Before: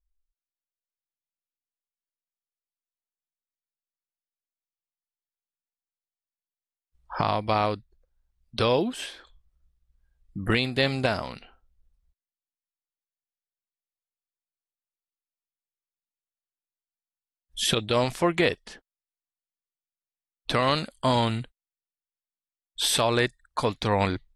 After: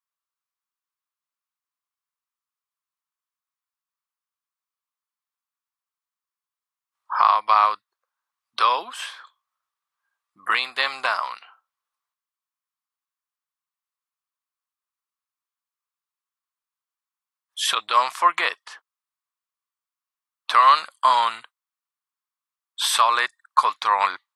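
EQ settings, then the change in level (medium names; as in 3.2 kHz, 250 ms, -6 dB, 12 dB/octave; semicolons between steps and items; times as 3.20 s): resonant high-pass 1.1 kHz, resonance Q 4.9; +1.5 dB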